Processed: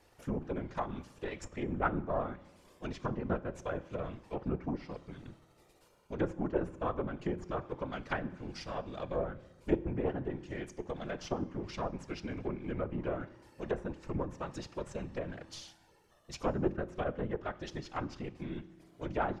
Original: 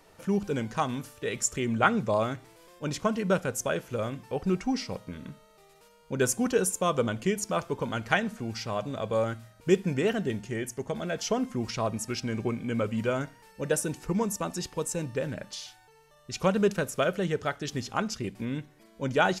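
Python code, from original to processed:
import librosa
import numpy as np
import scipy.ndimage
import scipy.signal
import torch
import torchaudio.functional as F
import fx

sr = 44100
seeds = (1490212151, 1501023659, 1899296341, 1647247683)

y = np.where(x < 0.0, 10.0 ** (-7.0 / 20.0) * x, x)
y = fx.whisperise(y, sr, seeds[0])
y = fx.env_lowpass_down(y, sr, base_hz=1300.0, full_db=-26.5)
y = fx.rev_fdn(y, sr, rt60_s=0.99, lf_ratio=1.55, hf_ratio=0.9, size_ms=17.0, drr_db=16.0)
y = y * librosa.db_to_amplitude(-5.0)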